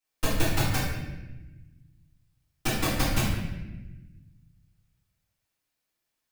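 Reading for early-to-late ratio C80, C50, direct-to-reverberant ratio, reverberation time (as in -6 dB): 3.0 dB, 0.0 dB, -13.5 dB, 1.1 s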